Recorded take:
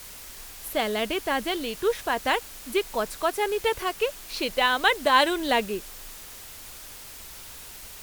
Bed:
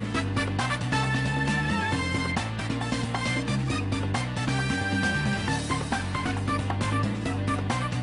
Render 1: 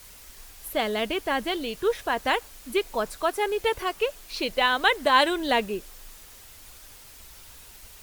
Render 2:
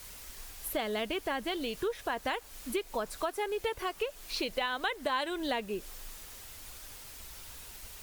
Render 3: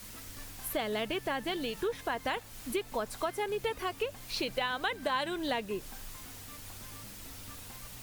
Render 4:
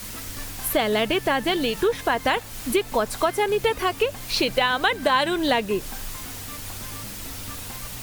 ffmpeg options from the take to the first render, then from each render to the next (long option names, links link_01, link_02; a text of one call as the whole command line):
ffmpeg -i in.wav -af "afftdn=noise_reduction=6:noise_floor=-43" out.wav
ffmpeg -i in.wav -af "acompressor=threshold=-31dB:ratio=4" out.wav
ffmpeg -i in.wav -i bed.wav -filter_complex "[1:a]volume=-25.5dB[link_01];[0:a][link_01]amix=inputs=2:normalize=0" out.wav
ffmpeg -i in.wav -af "volume=11.5dB" out.wav